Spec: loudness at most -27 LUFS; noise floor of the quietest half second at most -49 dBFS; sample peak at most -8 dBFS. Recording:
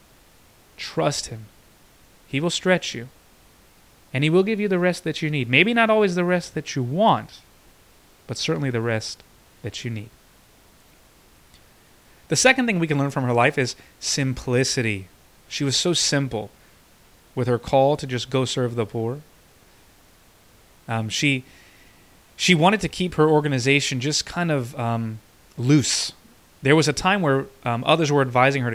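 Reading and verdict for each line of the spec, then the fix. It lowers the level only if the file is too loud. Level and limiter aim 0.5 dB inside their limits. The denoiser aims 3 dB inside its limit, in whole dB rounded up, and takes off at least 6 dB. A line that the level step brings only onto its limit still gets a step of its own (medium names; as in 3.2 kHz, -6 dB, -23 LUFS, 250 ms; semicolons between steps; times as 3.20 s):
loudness -21.5 LUFS: fail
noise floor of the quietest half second -54 dBFS: pass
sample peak -2.0 dBFS: fail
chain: trim -6 dB; peak limiter -8.5 dBFS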